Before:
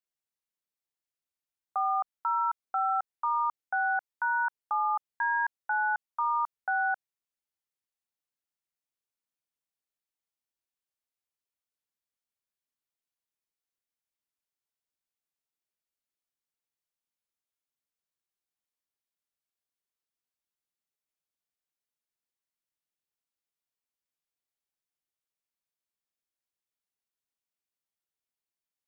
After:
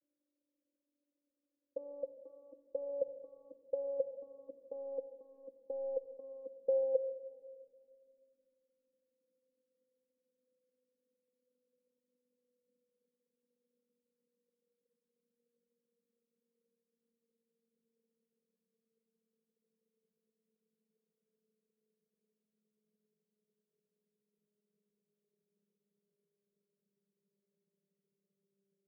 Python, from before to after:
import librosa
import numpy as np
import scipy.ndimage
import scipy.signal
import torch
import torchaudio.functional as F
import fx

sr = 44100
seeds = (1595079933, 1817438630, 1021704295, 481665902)

y = fx.vocoder_glide(x, sr, note=62, semitones=-7)
y = y + 0.47 * np.pad(y, (int(1.8 * sr / 1000.0), 0))[:len(y)]
y = fx.over_compress(y, sr, threshold_db=-35.0, ratio=-1.0)
y = scipy.signal.sosfilt(scipy.signal.cheby1(6, 3, 550.0, 'lowpass', fs=sr, output='sos'), y)
y = fx.room_shoebox(y, sr, seeds[0], volume_m3=3500.0, walls='mixed', distance_m=0.63)
y = y * 10.0 ** (16.5 / 20.0)